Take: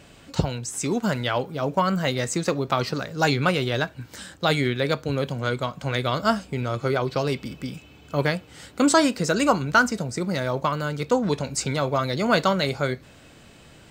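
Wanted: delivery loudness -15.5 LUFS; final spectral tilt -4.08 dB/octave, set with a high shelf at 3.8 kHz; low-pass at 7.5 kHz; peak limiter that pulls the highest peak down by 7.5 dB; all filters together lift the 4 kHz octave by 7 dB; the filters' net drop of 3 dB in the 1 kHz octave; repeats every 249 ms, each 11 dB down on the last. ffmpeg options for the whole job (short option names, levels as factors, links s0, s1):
-af "lowpass=7500,equalizer=f=1000:t=o:g=-5,highshelf=f=3800:g=6.5,equalizer=f=4000:t=o:g=5,alimiter=limit=0.251:level=0:latency=1,aecho=1:1:249|498|747:0.282|0.0789|0.0221,volume=2.99"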